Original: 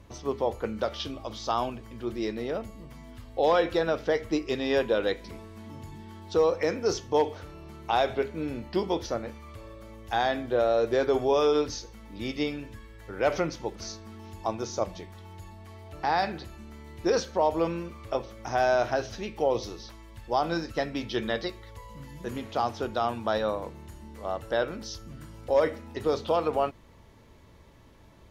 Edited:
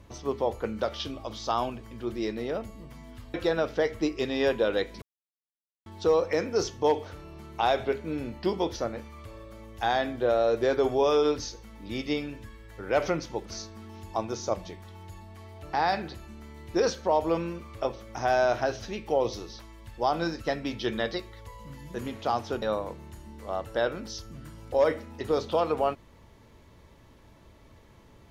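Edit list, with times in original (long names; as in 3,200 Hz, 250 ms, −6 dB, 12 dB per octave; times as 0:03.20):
0:03.34–0:03.64: remove
0:05.32–0:06.16: silence
0:22.92–0:23.38: remove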